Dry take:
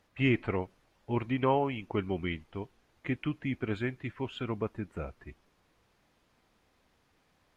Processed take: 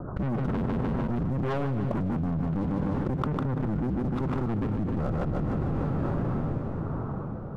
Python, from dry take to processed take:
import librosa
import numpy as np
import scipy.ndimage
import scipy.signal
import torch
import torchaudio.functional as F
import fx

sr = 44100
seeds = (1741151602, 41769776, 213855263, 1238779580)

p1 = fx.cycle_switch(x, sr, every=2, mode='inverted')
p2 = scipy.signal.sosfilt(scipy.signal.butter(12, 1400.0, 'lowpass', fs=sr, output='sos'), p1)
p3 = fx.peak_eq(p2, sr, hz=140.0, db=11.5, octaves=1.4)
p4 = fx.level_steps(p3, sr, step_db=15)
p5 = p3 + (p4 * 10.0 ** (2.5 / 20.0))
p6 = fx.leveller(p5, sr, passes=2)
p7 = fx.rotary_switch(p6, sr, hz=7.0, then_hz=1.1, switch_at_s=1.88)
p8 = 10.0 ** (-21.0 / 20.0) * np.tanh(p7 / 10.0 ** (-21.0 / 20.0))
p9 = p8 + fx.echo_feedback(p8, sr, ms=151, feedback_pct=41, wet_db=-12, dry=0)
p10 = fx.rev_plate(p9, sr, seeds[0], rt60_s=4.6, hf_ratio=0.9, predelay_ms=0, drr_db=19.5)
p11 = fx.env_flatten(p10, sr, amount_pct=100)
y = p11 * 10.0 ** (-6.5 / 20.0)